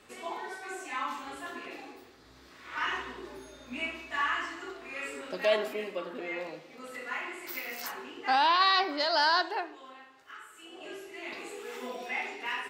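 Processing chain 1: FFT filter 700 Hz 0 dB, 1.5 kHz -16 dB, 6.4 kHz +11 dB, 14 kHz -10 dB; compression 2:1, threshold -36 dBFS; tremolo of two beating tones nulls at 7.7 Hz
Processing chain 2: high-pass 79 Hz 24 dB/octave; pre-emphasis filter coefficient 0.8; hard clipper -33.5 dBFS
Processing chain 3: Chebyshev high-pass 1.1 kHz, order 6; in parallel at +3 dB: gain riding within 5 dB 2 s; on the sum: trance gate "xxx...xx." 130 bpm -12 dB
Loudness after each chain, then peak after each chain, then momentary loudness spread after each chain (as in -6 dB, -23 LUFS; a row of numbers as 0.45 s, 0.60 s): -42.0 LUFS, -42.5 LUFS, -27.5 LUFS; -22.0 dBFS, -33.5 dBFS, -5.5 dBFS; 17 LU, 19 LU, 20 LU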